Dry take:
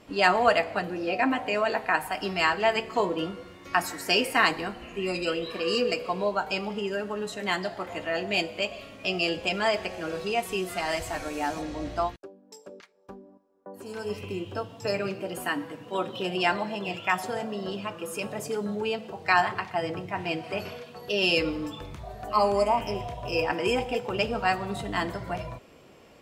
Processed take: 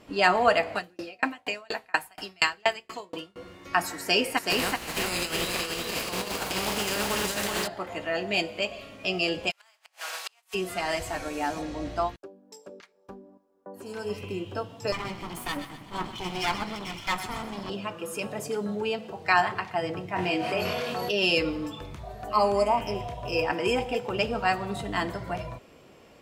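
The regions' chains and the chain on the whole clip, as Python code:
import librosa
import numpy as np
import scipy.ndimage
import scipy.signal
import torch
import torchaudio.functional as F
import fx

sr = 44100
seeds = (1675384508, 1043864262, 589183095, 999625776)

y = fx.chain(x, sr, fx.high_shelf(hz=2200.0, db=11.5),
    fx.tremolo_decay(direction='decaying', hz=4.2, depth_db=37), at=(0.75, 3.36))
y = fx.spec_flatten(y, sr, power=0.41, at=(4.37, 7.66), fade=0.02)
y = fx.over_compress(y, sr, threshold_db=-31.0, ratio=-0.5, at=(4.37, 7.66), fade=0.02)
y = fx.echo_single(y, sr, ms=377, db=-3.5, at=(4.37, 7.66), fade=0.02)
y = fx.spec_flatten(y, sr, power=0.56, at=(9.5, 10.53), fade=0.02)
y = fx.highpass(y, sr, hz=760.0, slope=24, at=(9.5, 10.53), fade=0.02)
y = fx.gate_flip(y, sr, shuts_db=-20.0, range_db=-36, at=(9.5, 10.53), fade=0.02)
y = fx.chain(y, sr, fx.lower_of_two(delay_ms=0.92),
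    fx.echo_wet_highpass(ms=127, feedback_pct=41, hz=1700.0, wet_db=-9.5), at=(14.92, 17.7))
y = fx.chain(y, sr, fx.low_shelf(hz=110.0, db=-9.5),
    fx.doubler(ms=22.0, db=-2),
    fx.env_flatten(amount_pct=70), at=(20.16, 21.11))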